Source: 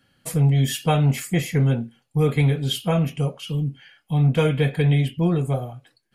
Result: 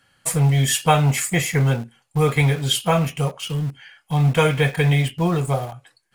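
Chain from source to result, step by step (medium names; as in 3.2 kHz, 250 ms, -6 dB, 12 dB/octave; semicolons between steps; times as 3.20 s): graphic EQ 250/1000/2000/8000 Hz -6/+7/+4/+9 dB; in parallel at -11 dB: bit crusher 5-bit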